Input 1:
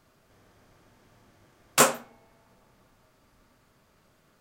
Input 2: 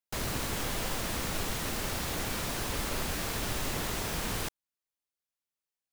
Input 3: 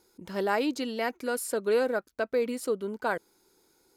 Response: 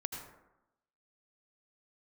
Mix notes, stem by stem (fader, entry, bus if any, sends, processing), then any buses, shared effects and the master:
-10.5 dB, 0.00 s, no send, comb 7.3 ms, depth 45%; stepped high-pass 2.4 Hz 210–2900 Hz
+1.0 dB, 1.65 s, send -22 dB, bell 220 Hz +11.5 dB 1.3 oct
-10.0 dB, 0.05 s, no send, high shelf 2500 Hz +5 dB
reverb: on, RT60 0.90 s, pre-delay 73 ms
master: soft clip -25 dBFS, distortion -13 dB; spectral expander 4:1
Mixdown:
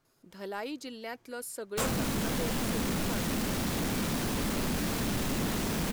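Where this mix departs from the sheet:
stem 1: missing stepped high-pass 2.4 Hz 210–2900 Hz; master: missing spectral expander 4:1

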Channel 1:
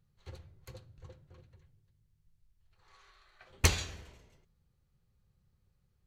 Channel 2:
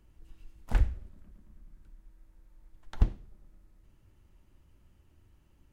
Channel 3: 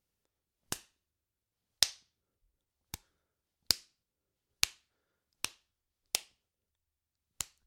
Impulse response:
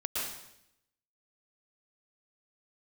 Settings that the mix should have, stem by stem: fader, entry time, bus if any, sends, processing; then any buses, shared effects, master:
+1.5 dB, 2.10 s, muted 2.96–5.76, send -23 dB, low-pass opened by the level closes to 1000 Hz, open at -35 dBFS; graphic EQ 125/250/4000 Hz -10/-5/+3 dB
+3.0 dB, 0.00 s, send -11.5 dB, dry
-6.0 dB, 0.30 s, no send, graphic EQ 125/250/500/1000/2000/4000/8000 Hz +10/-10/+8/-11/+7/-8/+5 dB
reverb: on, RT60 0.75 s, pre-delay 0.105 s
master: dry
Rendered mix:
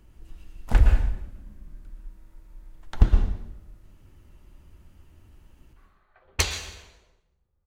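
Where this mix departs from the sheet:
stem 1: entry 2.10 s -> 2.75 s; stem 3: muted; reverb return +9.0 dB

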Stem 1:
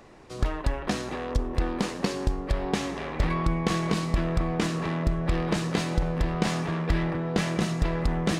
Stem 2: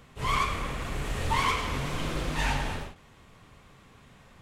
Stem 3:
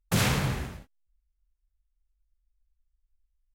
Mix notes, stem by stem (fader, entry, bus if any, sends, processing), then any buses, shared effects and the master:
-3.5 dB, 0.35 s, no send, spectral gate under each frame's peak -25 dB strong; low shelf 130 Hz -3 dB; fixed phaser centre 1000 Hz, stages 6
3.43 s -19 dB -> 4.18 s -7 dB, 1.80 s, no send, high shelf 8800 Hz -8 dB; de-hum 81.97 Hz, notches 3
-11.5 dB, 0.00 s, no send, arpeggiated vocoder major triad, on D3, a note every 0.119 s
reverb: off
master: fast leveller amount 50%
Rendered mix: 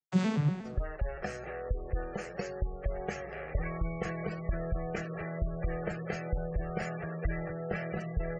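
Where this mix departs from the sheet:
stem 2: muted; stem 3 -11.5 dB -> -1.0 dB; master: missing fast leveller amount 50%

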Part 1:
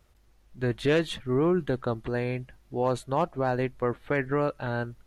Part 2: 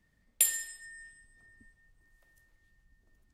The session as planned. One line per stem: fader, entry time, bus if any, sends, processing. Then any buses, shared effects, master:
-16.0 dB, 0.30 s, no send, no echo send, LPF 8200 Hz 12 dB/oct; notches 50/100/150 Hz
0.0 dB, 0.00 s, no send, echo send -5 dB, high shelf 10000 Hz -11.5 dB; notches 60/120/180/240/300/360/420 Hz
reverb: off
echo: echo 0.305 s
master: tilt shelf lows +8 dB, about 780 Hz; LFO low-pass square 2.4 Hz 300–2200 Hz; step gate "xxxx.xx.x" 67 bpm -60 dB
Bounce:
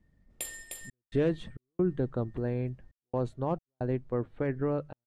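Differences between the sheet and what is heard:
stem 1 -16.0 dB -> -7.5 dB; master: missing LFO low-pass square 2.4 Hz 300–2200 Hz

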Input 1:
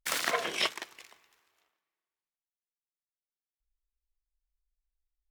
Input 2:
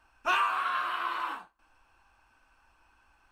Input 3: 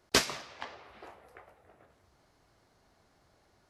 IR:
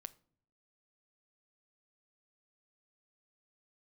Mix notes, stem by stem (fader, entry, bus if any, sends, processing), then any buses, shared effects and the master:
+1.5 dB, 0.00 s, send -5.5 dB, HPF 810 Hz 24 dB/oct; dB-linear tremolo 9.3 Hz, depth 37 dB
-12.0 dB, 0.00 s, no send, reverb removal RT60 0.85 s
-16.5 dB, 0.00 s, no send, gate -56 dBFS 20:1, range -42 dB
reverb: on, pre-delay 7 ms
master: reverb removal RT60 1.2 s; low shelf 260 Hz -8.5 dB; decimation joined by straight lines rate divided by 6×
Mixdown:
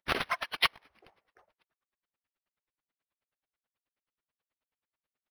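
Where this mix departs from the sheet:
stem 1 +1.5 dB -> +8.5 dB; stem 2: muted; stem 3 -16.5 dB -> -7.0 dB

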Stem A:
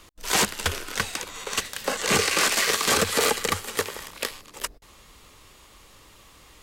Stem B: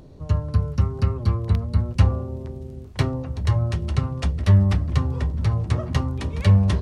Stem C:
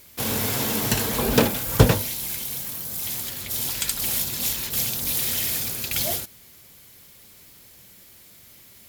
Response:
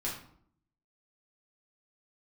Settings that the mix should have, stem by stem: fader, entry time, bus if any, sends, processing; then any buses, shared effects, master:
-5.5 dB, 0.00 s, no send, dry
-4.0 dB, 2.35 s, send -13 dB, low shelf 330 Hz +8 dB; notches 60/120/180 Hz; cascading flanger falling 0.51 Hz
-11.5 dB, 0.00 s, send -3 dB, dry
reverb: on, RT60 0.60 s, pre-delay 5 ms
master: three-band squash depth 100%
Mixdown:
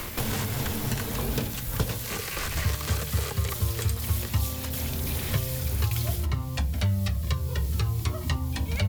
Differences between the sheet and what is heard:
stem A -5.5 dB -> -14.0 dB; stem B: missing low shelf 330 Hz +8 dB; reverb return -9.5 dB

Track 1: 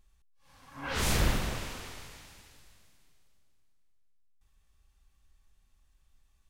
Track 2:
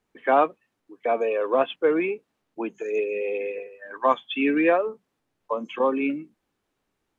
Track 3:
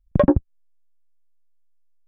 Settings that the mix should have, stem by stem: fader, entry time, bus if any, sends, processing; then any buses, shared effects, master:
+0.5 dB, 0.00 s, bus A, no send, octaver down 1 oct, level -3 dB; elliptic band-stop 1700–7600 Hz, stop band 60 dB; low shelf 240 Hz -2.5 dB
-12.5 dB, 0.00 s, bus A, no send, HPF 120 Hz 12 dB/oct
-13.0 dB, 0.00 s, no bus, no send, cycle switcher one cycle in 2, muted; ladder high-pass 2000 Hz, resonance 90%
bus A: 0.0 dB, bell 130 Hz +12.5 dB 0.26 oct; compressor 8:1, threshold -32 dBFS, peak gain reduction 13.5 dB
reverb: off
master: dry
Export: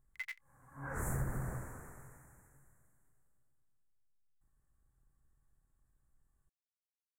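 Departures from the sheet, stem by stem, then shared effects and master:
stem 1 +0.5 dB -> -6.5 dB; stem 2: muted

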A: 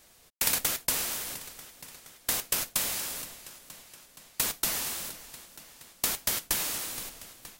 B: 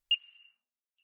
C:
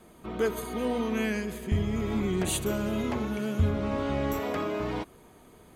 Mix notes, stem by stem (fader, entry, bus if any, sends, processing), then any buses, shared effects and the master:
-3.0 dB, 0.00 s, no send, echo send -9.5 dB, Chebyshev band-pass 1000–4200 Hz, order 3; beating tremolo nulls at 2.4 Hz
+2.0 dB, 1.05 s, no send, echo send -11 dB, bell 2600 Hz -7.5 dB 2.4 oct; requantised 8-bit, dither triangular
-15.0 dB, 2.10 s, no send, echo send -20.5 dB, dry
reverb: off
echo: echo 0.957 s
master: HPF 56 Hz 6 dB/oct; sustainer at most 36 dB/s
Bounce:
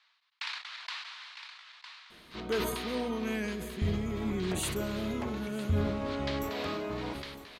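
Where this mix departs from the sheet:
stem B: muted; stem C -15.0 dB -> -5.0 dB; master: missing HPF 56 Hz 6 dB/oct

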